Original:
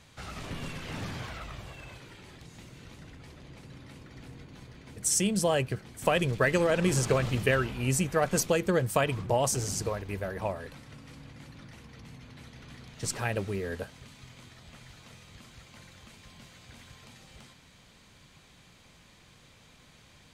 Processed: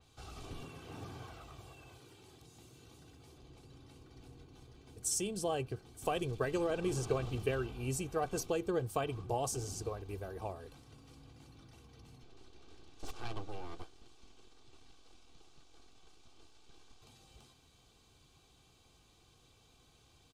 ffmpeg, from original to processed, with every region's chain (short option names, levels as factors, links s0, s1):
-filter_complex "[0:a]asettb=1/sr,asplit=3[s0][s1][s2];[s0]atrim=end=0.634[s3];[s1]atrim=start=0.63:end=3.38,asetpts=PTS-STARTPTS,afade=t=in:d=0.004:c=qsin,afade=t=out:st=2.746:d=0.004:c=qsin,acrossover=split=2500[s4][s5];[s5]acompressor=threshold=0.00178:ratio=4:attack=1:release=60[s6];[s4][s6]amix=inputs=2:normalize=0,highpass=80,highshelf=f=6500:g=7.5[s7];[s2]atrim=start=3.376[s8];[s3][s7]acrossfade=d=0.004:c1=hsin:c2=qsin[s9];[s9][s8]acrossfade=d=0.004:c1=qsin:c2=hsin,asettb=1/sr,asplit=3[s10][s11][s12];[s10]atrim=end=12.234[s13];[s11]atrim=start=12.23:end=17.02,asetpts=PTS-STARTPTS,afade=t=in:d=0.004:c=qsin,afade=t=out:st=4.786:d=0.004:c=qsin,aeval=exprs='abs(val(0))':c=same,lowpass=6800[s14];[s12]atrim=start=17.016[s15];[s13][s14]acrossfade=d=0.004:c1=hsin:c2=qsin[s16];[s16][s15]acrossfade=d=0.004:c1=qsin:c2=hsin,equalizer=f=1900:w=2.4:g=-13.5,aecho=1:1:2.6:0.53,adynamicequalizer=threshold=0.00398:dfrequency=4300:dqfactor=0.7:tfrequency=4300:tqfactor=0.7:attack=5:release=100:ratio=0.375:range=3.5:mode=cutabove:tftype=highshelf,volume=0.398"